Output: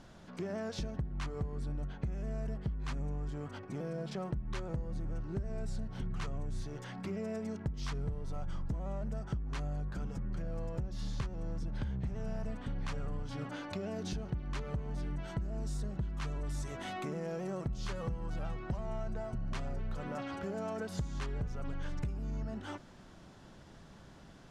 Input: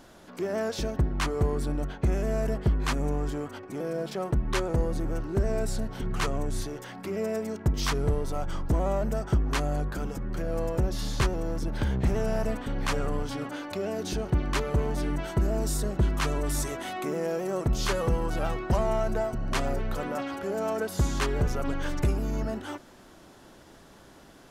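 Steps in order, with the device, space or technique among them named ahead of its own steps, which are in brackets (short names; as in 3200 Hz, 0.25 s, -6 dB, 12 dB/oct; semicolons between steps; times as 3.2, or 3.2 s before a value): jukebox (LPF 7200 Hz 12 dB/oct; resonant low shelf 230 Hz +6 dB, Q 1.5; compressor 5:1, threshold -30 dBFS, peak gain reduction 15.5 dB); gain -5 dB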